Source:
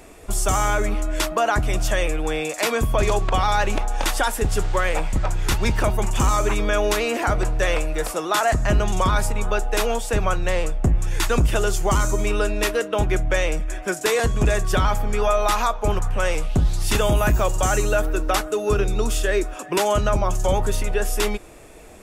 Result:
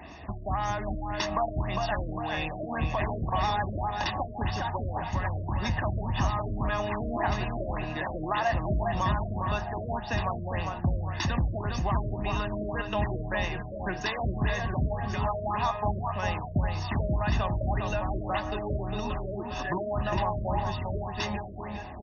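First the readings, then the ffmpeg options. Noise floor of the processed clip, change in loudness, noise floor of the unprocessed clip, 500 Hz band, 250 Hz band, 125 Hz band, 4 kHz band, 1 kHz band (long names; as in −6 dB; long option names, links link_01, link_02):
−38 dBFS, −8.5 dB, −36 dBFS, −10.5 dB, −6.0 dB, −5.0 dB, −10.0 dB, −6.0 dB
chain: -filter_complex "[0:a]acompressor=threshold=-29dB:ratio=3,highpass=frequency=58:width=0.5412,highpass=frequency=58:width=1.3066,aecho=1:1:1.1:0.75,asplit=2[link_01][link_02];[link_02]adelay=404,lowpass=frequency=3500:poles=1,volume=-4dB,asplit=2[link_03][link_04];[link_04]adelay=404,lowpass=frequency=3500:poles=1,volume=0.55,asplit=2[link_05][link_06];[link_06]adelay=404,lowpass=frequency=3500:poles=1,volume=0.55,asplit=2[link_07][link_08];[link_08]adelay=404,lowpass=frequency=3500:poles=1,volume=0.55,asplit=2[link_09][link_10];[link_10]adelay=404,lowpass=frequency=3500:poles=1,volume=0.55,asplit=2[link_11][link_12];[link_12]adelay=404,lowpass=frequency=3500:poles=1,volume=0.55,asplit=2[link_13][link_14];[link_14]adelay=404,lowpass=frequency=3500:poles=1,volume=0.55[link_15];[link_03][link_05][link_07][link_09][link_11][link_13][link_15]amix=inputs=7:normalize=0[link_16];[link_01][link_16]amix=inputs=2:normalize=0,afftfilt=real='re*lt(b*sr/1024,640*pow(6700/640,0.5+0.5*sin(2*PI*1.8*pts/sr)))':imag='im*lt(b*sr/1024,640*pow(6700/640,0.5+0.5*sin(2*PI*1.8*pts/sr)))':win_size=1024:overlap=0.75"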